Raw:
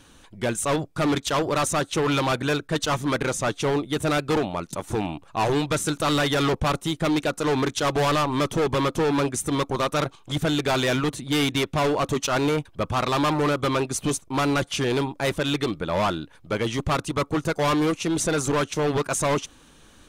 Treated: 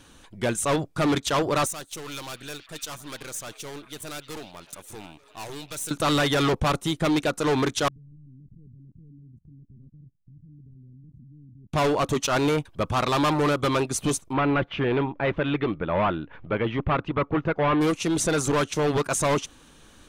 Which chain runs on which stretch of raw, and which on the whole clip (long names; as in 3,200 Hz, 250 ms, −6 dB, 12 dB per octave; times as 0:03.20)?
0:01.66–0:05.91: gain on one half-wave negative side −7 dB + first-order pre-emphasis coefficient 0.8 + echo through a band-pass that steps 310 ms, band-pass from 3,300 Hz, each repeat −0.7 octaves, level −10 dB
0:07.88–0:11.73: inverse Chebyshev low-pass filter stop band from 680 Hz, stop band 60 dB + output level in coarse steps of 24 dB
0:14.33–0:17.81: low-pass filter 2,700 Hz 24 dB per octave + upward compression, threshold −33 dBFS
whole clip: no processing